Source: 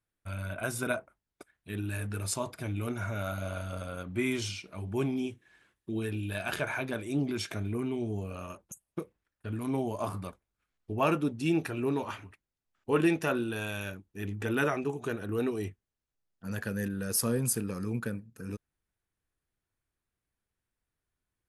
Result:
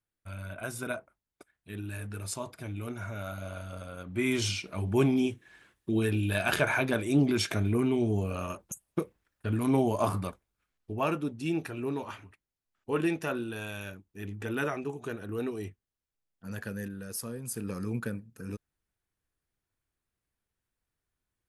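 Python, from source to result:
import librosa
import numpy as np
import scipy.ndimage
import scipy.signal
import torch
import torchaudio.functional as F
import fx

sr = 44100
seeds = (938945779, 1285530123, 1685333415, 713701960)

y = fx.gain(x, sr, db=fx.line((3.97, -3.5), (4.5, 6.0), (10.13, 6.0), (11.12, -3.0), (16.7, -3.0), (17.43, -11.0), (17.68, 0.0)))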